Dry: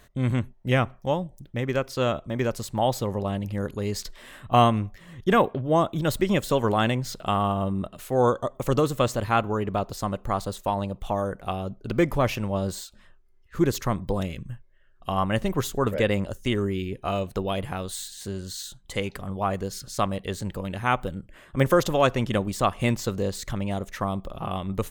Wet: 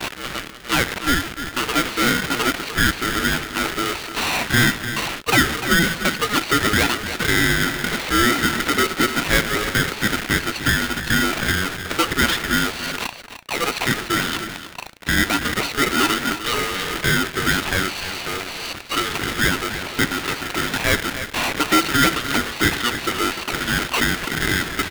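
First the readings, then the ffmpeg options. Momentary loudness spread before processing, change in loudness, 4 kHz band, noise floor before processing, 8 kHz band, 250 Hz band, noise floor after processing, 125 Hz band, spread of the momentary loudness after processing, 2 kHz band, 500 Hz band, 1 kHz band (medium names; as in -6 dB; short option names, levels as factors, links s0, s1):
10 LU, +6.5 dB, +14.5 dB, -55 dBFS, +13.0 dB, +4.0 dB, -36 dBFS, -0.5 dB, 7 LU, +16.0 dB, -2.0 dB, +3.5 dB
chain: -filter_complex "[0:a]aeval=exprs='val(0)+0.5*0.075*sgn(val(0))':c=same,highpass=f=470:w=0.5412,highpass=f=470:w=1.3066,agate=range=0.0224:threshold=0.0282:ratio=3:detection=peak,asplit=2[s0][s1];[s1]alimiter=limit=0.2:level=0:latency=1:release=480,volume=1.12[s2];[s0][s2]amix=inputs=2:normalize=0,flanger=delay=1.9:depth=4.8:regen=82:speed=0.78:shape=sinusoidal,asplit=2[s3][s4];[s4]highpass=f=720:p=1,volume=5.01,asoftclip=type=tanh:threshold=0.501[s5];[s3][s5]amix=inputs=2:normalize=0,lowpass=f=2900:p=1,volume=0.501,asplit=2[s6][s7];[s7]aecho=0:1:299:0.282[s8];[s6][s8]amix=inputs=2:normalize=0,aresample=8000,aresample=44100,aeval=exprs='val(0)*sgn(sin(2*PI*840*n/s))':c=same"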